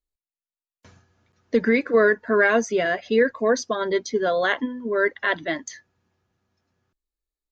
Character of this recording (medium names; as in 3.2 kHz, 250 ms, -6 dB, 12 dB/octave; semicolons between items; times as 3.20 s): noise floor -96 dBFS; spectral tilt -2.5 dB/octave